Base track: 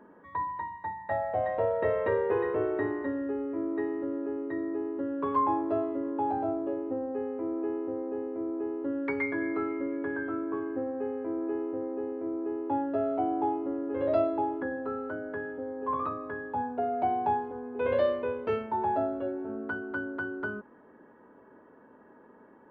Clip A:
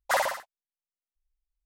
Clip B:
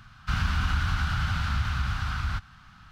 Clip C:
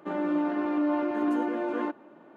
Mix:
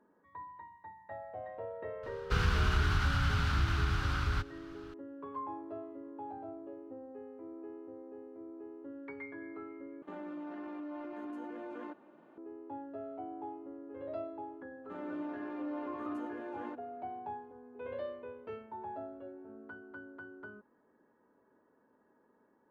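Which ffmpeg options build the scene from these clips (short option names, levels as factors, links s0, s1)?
-filter_complex "[3:a]asplit=2[s0][s1];[0:a]volume=0.188[s2];[s0]acompressor=threshold=0.0141:ratio=3:attack=7.2:release=53:knee=1:detection=peak[s3];[s2]asplit=2[s4][s5];[s4]atrim=end=10.024[s6];[s3]atrim=end=2.36,asetpts=PTS-STARTPTS,volume=0.422[s7];[s5]atrim=start=12.376[s8];[2:a]atrim=end=2.91,asetpts=PTS-STARTPTS,volume=0.708,afade=t=in:d=0.004:c=hsin,afade=t=out:st=2.906:d=0.004:c=hsin,adelay=2030[s9];[s1]atrim=end=2.36,asetpts=PTS-STARTPTS,volume=0.224,afade=t=in:d=0.004:c=hsin,afade=t=out:st=2.356:d=0.004:c=hsin,adelay=14840[s10];[s6][s7]acrossfade=d=0.004:c1=hsin:c2=hsin[s11];[s11][s8]acrossfade=d=0.004:c1=hsin:c2=hsin[s12];[s12][s9][s10]amix=inputs=3:normalize=0"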